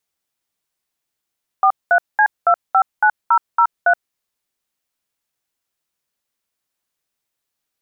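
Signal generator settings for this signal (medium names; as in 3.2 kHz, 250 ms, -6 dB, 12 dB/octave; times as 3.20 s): DTMF "43C259003", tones 74 ms, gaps 205 ms, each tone -12 dBFS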